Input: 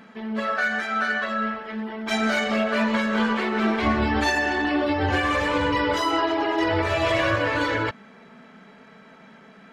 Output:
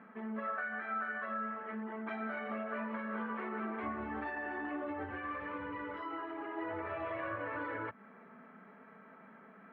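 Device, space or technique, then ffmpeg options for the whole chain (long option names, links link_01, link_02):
bass amplifier: -filter_complex "[0:a]acompressor=threshold=-29dB:ratio=5,highpass=frequency=87:width=0.5412,highpass=frequency=87:width=1.3066,equalizer=frequency=94:width_type=q:width=4:gain=-5,equalizer=frequency=140:width_type=q:width=4:gain=-8,equalizer=frequency=1200:width_type=q:width=4:gain=5,lowpass=frequency=2100:width=0.5412,lowpass=frequency=2100:width=1.3066,asettb=1/sr,asplit=3[link_01][link_02][link_03];[link_01]atrim=end=5.044[link_04];[link_02]atrim=start=5.04:end=6.57,asetpts=PTS-STARTPTS,afade=type=in:duration=0.004:curve=qsin,afade=type=out:start_time=1.526:duration=0.004:curve=qsin,equalizer=frequency=700:width_type=o:width=1.5:gain=-5.5[link_05];[link_03]atrim=start=6.566[link_06];[link_04][link_05]acrossfade=duration=0.004:curve1=hsin:curve2=qsin[link_07];[link_07][link_06]acrossfade=duration=0.004:curve1=qsin:curve2=hsin,volume=-8dB"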